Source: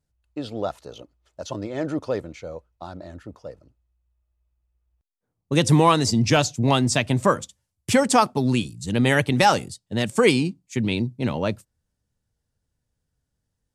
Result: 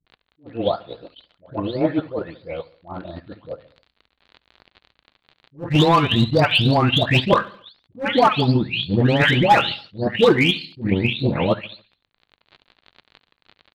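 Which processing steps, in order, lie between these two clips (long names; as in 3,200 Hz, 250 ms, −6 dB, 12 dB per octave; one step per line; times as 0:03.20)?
every frequency bin delayed by itself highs late, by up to 511 ms
surface crackle 59 per second −34 dBFS
Butterworth low-pass 4,400 Hz 96 dB per octave
in parallel at +1.5 dB: brickwall limiter −17.5 dBFS, peak gain reduction 11 dB
on the sum: dynamic equaliser 3,100 Hz, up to +5 dB, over −38 dBFS, Q 2.2
hard clipping −9.5 dBFS, distortion −21 dB
hum removal 52.35 Hz, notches 5
on a send at −16 dB: convolution reverb RT60 0.40 s, pre-delay 8 ms
on the sum: transient designer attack +6 dB, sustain −9 dB
repeating echo 71 ms, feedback 49%, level −21 dB
level that may rise only so fast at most 260 dB per second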